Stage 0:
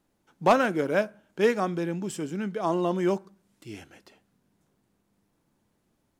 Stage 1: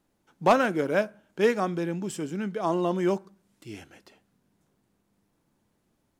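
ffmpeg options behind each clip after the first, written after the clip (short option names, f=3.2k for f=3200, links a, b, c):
-af anull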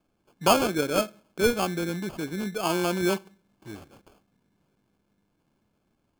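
-af "aresample=16000,aresample=44100,acrusher=samples=23:mix=1:aa=0.000001"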